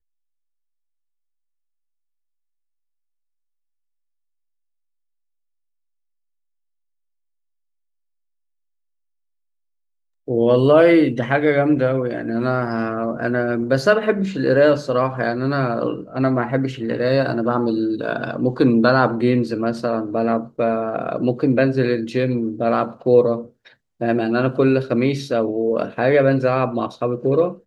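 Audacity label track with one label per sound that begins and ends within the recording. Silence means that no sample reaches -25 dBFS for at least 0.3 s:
10.280000	23.410000	sound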